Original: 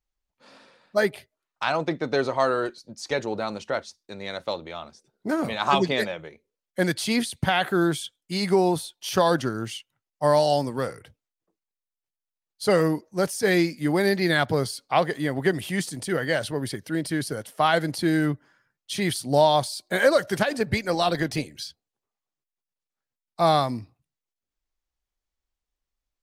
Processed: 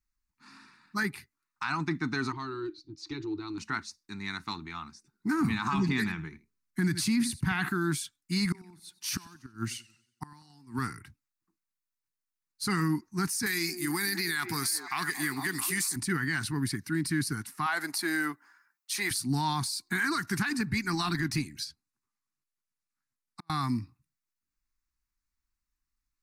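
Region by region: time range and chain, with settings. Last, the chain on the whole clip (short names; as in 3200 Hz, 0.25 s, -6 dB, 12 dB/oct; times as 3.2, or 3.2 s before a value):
2.32–3.58 EQ curve 140 Hz 0 dB, 220 Hz -21 dB, 310 Hz +13 dB, 570 Hz -7 dB, 1200 Hz -8 dB, 1700 Hz -13 dB, 3600 Hz +1 dB, 9900 Hz -24 dB + compressor 1.5:1, threshold -36 dBFS
5.41–7.69 low shelf 330 Hz +8 dB + echo 81 ms -17.5 dB
8.45–10.79 HPF 51 Hz + flipped gate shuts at -16 dBFS, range -28 dB + warbling echo 92 ms, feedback 45%, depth 113 cents, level -21.5 dB
13.46–15.96 RIAA curve recording + delay with a stepping band-pass 0.222 s, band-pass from 440 Hz, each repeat 0.7 oct, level -7.5 dB
17.66–19.11 resonant high-pass 580 Hz, resonance Q 6.3 + high shelf 12000 Hz +9.5 dB
21.64–23.5 brick-wall FIR low-pass 13000 Hz + compressor 3:1, threshold -37 dBFS + flipped gate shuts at -25 dBFS, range -38 dB
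whole clip: Chebyshev band-stop 280–1100 Hz, order 2; bell 3200 Hz -15 dB 0.26 oct; limiter -21.5 dBFS; gain +1.5 dB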